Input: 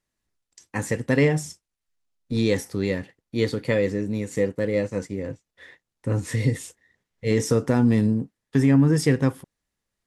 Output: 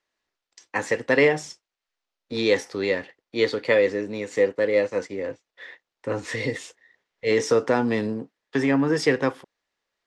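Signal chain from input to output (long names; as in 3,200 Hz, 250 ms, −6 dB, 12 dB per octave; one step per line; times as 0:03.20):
three-way crossover with the lows and the highs turned down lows −19 dB, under 350 Hz, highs −23 dB, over 6,000 Hz
level +5.5 dB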